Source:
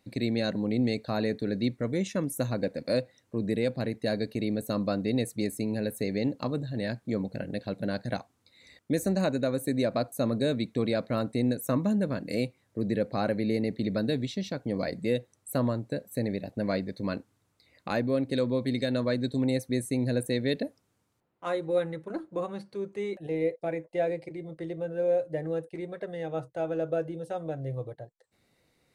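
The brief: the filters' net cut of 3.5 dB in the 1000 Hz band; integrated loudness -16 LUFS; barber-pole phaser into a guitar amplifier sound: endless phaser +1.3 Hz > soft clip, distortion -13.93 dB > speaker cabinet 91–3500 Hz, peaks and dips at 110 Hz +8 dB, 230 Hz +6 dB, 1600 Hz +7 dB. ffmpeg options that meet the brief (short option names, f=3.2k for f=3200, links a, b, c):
-filter_complex "[0:a]equalizer=f=1k:t=o:g=-6.5,asplit=2[a][b];[b]afreqshift=1.3[c];[a][c]amix=inputs=2:normalize=1,asoftclip=threshold=-28dB,highpass=91,equalizer=f=110:t=q:w=4:g=8,equalizer=f=230:t=q:w=4:g=6,equalizer=f=1.6k:t=q:w=4:g=7,lowpass=f=3.5k:w=0.5412,lowpass=f=3.5k:w=1.3066,volume=18.5dB"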